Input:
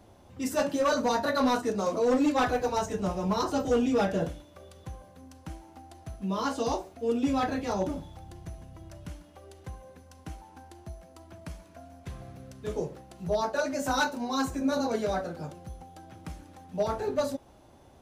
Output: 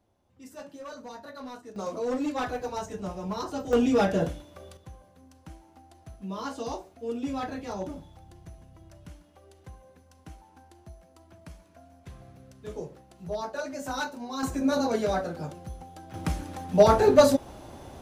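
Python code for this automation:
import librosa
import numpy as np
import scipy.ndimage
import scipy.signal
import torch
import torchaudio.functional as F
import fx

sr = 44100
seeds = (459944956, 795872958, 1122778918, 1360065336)

y = fx.gain(x, sr, db=fx.steps((0.0, -16.0), (1.76, -5.0), (3.73, 3.0), (4.77, -5.0), (14.43, 2.5), (16.14, 11.5)))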